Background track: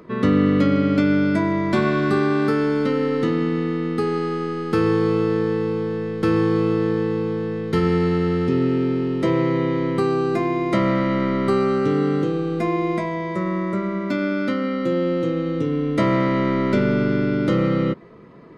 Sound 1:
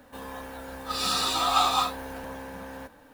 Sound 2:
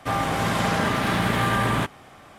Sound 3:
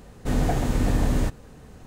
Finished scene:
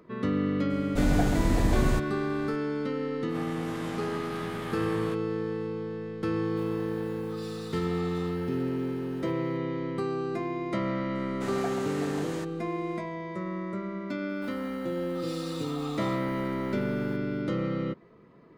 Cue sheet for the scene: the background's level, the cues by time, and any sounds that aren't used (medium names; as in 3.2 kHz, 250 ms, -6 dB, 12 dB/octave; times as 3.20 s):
background track -10.5 dB
0.70 s: add 3 -2.5 dB + peaking EQ 4.1 kHz +2.5 dB
3.29 s: add 2 -17 dB + reverse spectral sustain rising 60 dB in 0.37 s
6.44 s: add 1 -8 dB + compression, threshold -37 dBFS
11.15 s: add 3 -6 dB + frequency weighting A
14.29 s: add 1 -9 dB + compression 2.5:1, threshold -34 dBFS